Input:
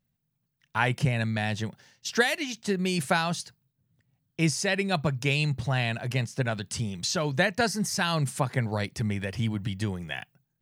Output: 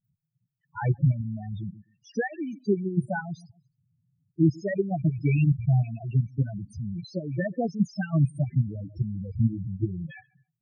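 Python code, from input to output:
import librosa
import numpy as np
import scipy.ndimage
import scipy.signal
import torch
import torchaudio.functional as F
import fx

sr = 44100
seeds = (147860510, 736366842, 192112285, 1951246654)

p1 = fx.rattle_buzz(x, sr, strikes_db=-36.0, level_db=-27.0)
p2 = p1 + fx.echo_feedback(p1, sr, ms=132, feedback_pct=30, wet_db=-20.5, dry=0)
p3 = fx.level_steps(p2, sr, step_db=13)
p4 = fx.small_body(p3, sr, hz=(320.0, 2300.0), ring_ms=35, db=7)
p5 = fx.spec_topn(p4, sr, count=4)
y = fx.low_shelf(p5, sr, hz=480.0, db=9.0)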